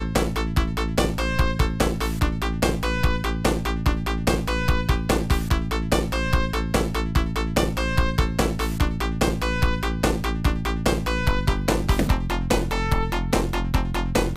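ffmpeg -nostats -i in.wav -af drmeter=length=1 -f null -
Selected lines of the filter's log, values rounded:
Channel 1: DR: 9.8
Overall DR: 9.8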